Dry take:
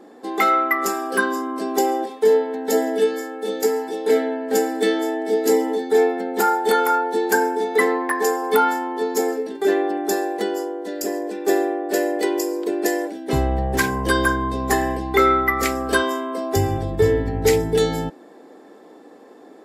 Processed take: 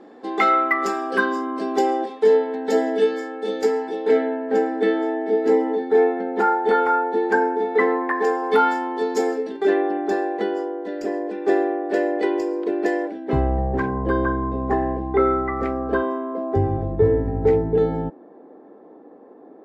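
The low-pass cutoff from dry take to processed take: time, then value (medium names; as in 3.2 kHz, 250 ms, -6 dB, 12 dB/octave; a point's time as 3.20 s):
3.65 s 4.2 kHz
4.46 s 2 kHz
8.03 s 2 kHz
8.82 s 5.1 kHz
9.40 s 5.1 kHz
9.82 s 2.5 kHz
13.07 s 2.5 kHz
13.72 s 1 kHz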